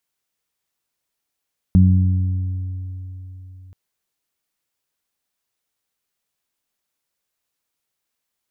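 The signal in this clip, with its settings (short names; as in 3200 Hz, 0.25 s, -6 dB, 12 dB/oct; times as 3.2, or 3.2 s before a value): additive tone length 1.98 s, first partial 92.6 Hz, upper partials -1/-19 dB, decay 3.88 s, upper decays 1.50/3.44 s, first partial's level -9.5 dB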